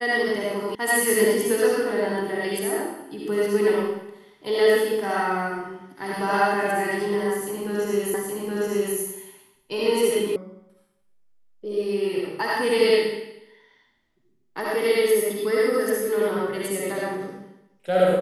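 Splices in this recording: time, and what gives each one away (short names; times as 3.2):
0.75 sound cut off
8.14 repeat of the last 0.82 s
10.36 sound cut off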